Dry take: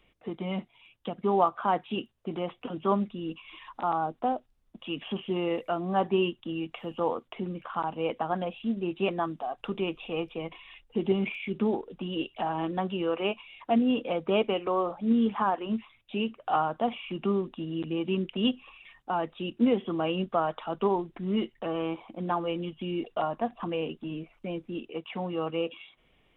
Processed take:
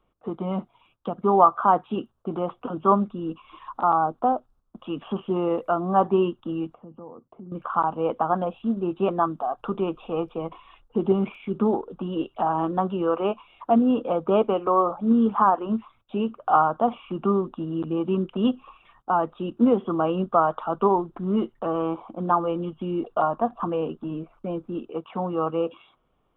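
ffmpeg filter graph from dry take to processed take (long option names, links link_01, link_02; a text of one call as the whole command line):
ffmpeg -i in.wav -filter_complex "[0:a]asettb=1/sr,asplit=3[link_01][link_02][link_03];[link_01]atrim=end=6.744[link_04];[link_02]atrim=start=6.74:end=7.52,asetpts=PTS-STARTPTS,afade=type=in:duration=0.004:curve=qsin,afade=type=out:start_time=0.776:duration=0.004:curve=qsin,bandpass=frequency=150:width_type=q:width=0.77,acompressor=threshold=-46dB:ratio=3:attack=3.2:release=140:knee=1:detection=peak[link_05];[link_03]atrim=start=7.516[link_06];[link_04][link_05]acrossfade=duration=0.004:curve1=hsin:curve2=qsin[link_07];[link_07][link_06]acrossfade=duration=0.004:curve1=qsin:curve2=hsin,agate=range=-8dB:threshold=-59dB:ratio=16:detection=peak,highshelf=frequency=1600:width_type=q:width=3:gain=-8,volume=4.5dB" out.wav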